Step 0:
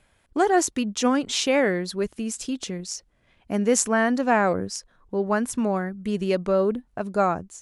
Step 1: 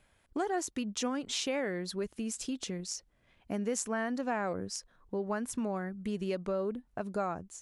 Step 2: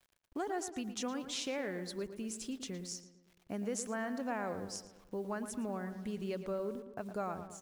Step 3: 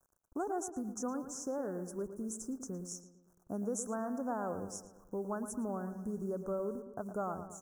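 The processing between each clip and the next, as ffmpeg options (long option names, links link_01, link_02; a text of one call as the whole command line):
ffmpeg -i in.wav -af "acompressor=threshold=-28dB:ratio=2.5,volume=-5dB" out.wav
ffmpeg -i in.wav -filter_complex "[0:a]acrusher=bits=9:mix=0:aa=0.000001,asplit=2[link_01][link_02];[link_02]adelay=113,lowpass=frequency=2600:poles=1,volume=-10dB,asplit=2[link_03][link_04];[link_04]adelay=113,lowpass=frequency=2600:poles=1,volume=0.54,asplit=2[link_05][link_06];[link_06]adelay=113,lowpass=frequency=2600:poles=1,volume=0.54,asplit=2[link_07][link_08];[link_08]adelay=113,lowpass=frequency=2600:poles=1,volume=0.54,asplit=2[link_09][link_10];[link_10]adelay=113,lowpass=frequency=2600:poles=1,volume=0.54,asplit=2[link_11][link_12];[link_12]adelay=113,lowpass=frequency=2600:poles=1,volume=0.54[link_13];[link_03][link_05][link_07][link_09][link_11][link_13]amix=inputs=6:normalize=0[link_14];[link_01][link_14]amix=inputs=2:normalize=0,volume=-5dB" out.wav
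ffmpeg -i in.wav -af "asuperstop=centerf=3000:order=12:qfactor=0.68,volume=1dB" out.wav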